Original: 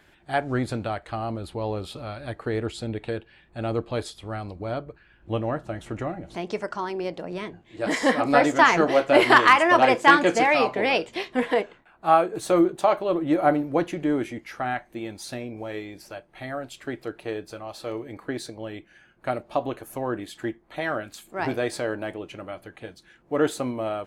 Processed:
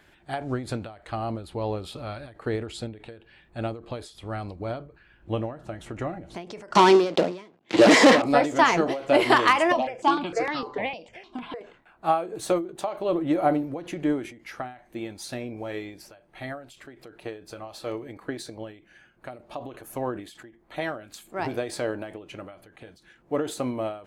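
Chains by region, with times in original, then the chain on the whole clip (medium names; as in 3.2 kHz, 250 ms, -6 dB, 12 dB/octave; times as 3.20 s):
6.75–8.22 s: waveshaping leveller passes 5 + band-pass 200–6600 Hz + three bands compressed up and down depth 70%
9.72–11.61 s: low-pass 5.3 kHz + stepped phaser 6.6 Hz 390–2400 Hz
whole clip: dynamic bell 1.6 kHz, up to -5 dB, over -35 dBFS, Q 1.5; endings held to a fixed fall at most 120 dB/s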